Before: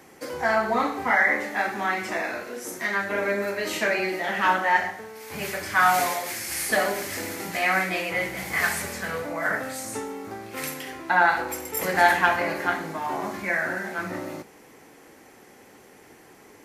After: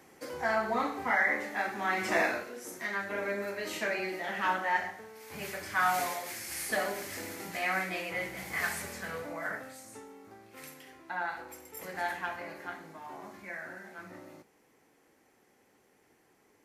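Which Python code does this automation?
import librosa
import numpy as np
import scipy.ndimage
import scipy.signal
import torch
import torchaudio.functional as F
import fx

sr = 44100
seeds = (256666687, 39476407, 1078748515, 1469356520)

y = fx.gain(x, sr, db=fx.line((1.8, -7.0), (2.22, 2.0), (2.53, -8.5), (9.33, -8.5), (9.84, -16.0)))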